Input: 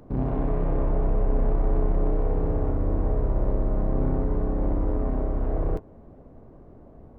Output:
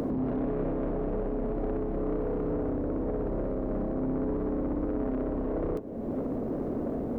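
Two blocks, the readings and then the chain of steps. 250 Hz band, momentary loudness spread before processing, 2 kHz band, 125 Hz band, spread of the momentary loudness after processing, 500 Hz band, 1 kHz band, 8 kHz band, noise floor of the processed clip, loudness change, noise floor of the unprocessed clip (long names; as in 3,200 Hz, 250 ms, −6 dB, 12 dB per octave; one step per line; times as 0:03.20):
+1.5 dB, 2 LU, −2.0 dB, −9.0 dB, 2 LU, 0.0 dB, −4.0 dB, can't be measured, −34 dBFS, −4.5 dB, −49 dBFS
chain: upward compression, threshold −23 dBFS
octave-band graphic EQ 250/500/1,000 Hz +11/+7/−4 dB
brickwall limiter −19.5 dBFS, peak gain reduction 11.5 dB
spectral tilt +1.5 dB per octave
soft clipping −26.5 dBFS, distortion −17 dB
level +2.5 dB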